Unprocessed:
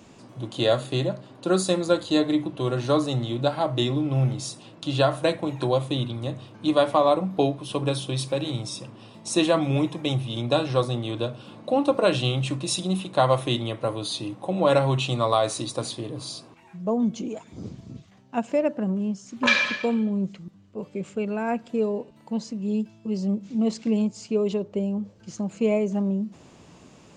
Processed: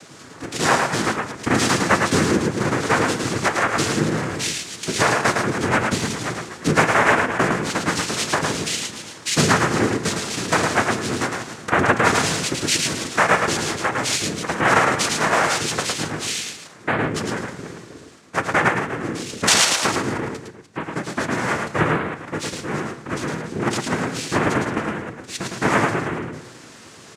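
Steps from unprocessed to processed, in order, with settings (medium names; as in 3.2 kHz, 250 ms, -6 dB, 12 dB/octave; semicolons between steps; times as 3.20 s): chunks repeated in reverse 164 ms, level -12.5 dB; steep high-pass 260 Hz; treble shelf 6.3 kHz +11 dB; in parallel at +2 dB: compression, threshold -30 dBFS, peak gain reduction 15 dB; on the sum: noise-vocoded speech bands 3; delay 109 ms -4 dB; on a send at -12 dB: reverberation RT60 0.55 s, pre-delay 6 ms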